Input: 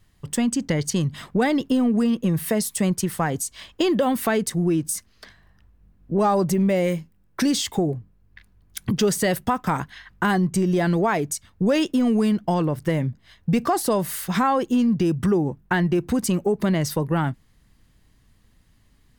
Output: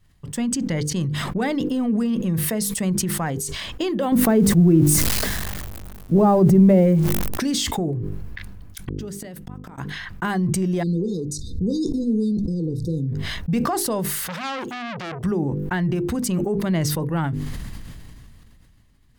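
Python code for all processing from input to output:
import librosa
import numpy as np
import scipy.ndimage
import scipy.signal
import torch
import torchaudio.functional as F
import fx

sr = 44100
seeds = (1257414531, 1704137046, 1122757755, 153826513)

y = fx.chain(x, sr, fx.crossing_spikes(level_db=-24.5),
    fx.tilt_shelf(db=10.0, hz=1200.0), at=(4.12, 7.4))
y = fx.chain(y, sr, fx.low_shelf(hz=410.0, db=5.5),
    fx.gate_flip(shuts_db=-15.0, range_db=-35), at=(8.78, 9.78))
y = fx.chain(y, sr, fx.brickwall_bandstop(low_hz=520.0, high_hz=3600.0),
    fx.air_absorb(metres=55.0),
    fx.pre_swell(db_per_s=83.0), at=(10.83, 13.09))
y = fx.chain(y, sr, fx.highpass(hz=93.0, slope=12),
    fx.transformer_sat(knee_hz=2900.0), at=(14.23, 15.24))
y = fx.bass_treble(y, sr, bass_db=4, treble_db=-1)
y = fx.hum_notches(y, sr, base_hz=50, count=10)
y = fx.sustainer(y, sr, db_per_s=21.0)
y = F.gain(torch.from_numpy(y), -4.0).numpy()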